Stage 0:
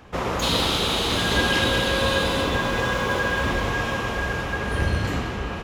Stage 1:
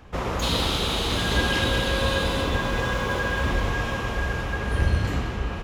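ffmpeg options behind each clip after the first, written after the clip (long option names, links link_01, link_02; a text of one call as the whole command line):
ffmpeg -i in.wav -af "lowshelf=frequency=72:gain=11,volume=-3dB" out.wav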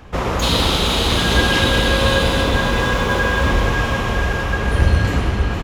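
ffmpeg -i in.wav -af "aecho=1:1:464:0.355,volume=7dB" out.wav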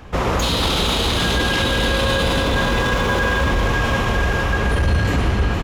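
ffmpeg -i in.wav -af "alimiter=limit=-11.5dB:level=0:latency=1:release=13,volume=1.5dB" out.wav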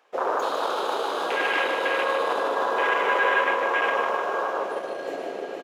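ffmpeg -i in.wav -filter_complex "[0:a]afwtdn=0.112,highpass=frequency=440:width=0.5412,highpass=frequency=440:width=1.3066,asplit=2[link_01][link_02];[link_02]aecho=0:1:151|302|453|604|755|906|1057:0.501|0.281|0.157|0.088|0.0493|0.0276|0.0155[link_03];[link_01][link_03]amix=inputs=2:normalize=0,volume=-1dB" out.wav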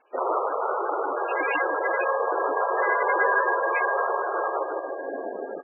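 ffmpeg -i in.wav -ar 24000 -c:a libmp3lame -b:a 8k out.mp3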